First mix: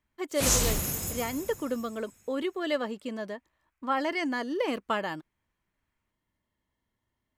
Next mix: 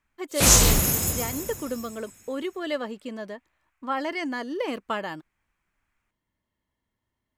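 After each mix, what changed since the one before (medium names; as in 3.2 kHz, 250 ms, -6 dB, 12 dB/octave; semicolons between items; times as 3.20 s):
background +9.5 dB; reverb: off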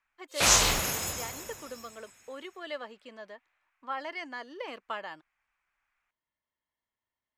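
speech -6.0 dB; master: add three-band isolator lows -13 dB, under 520 Hz, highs -12 dB, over 5.9 kHz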